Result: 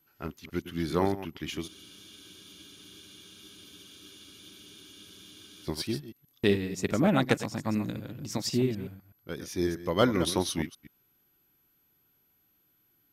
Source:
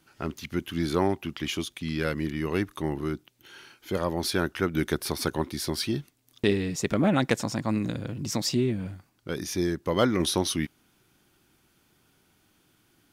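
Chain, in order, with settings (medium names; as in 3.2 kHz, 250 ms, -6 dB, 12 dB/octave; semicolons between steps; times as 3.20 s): chunks repeated in reverse 125 ms, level -9 dB; whistle 12 kHz -57 dBFS; spectral freeze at 1.69 s, 3.97 s; upward expansion 1.5:1, over -40 dBFS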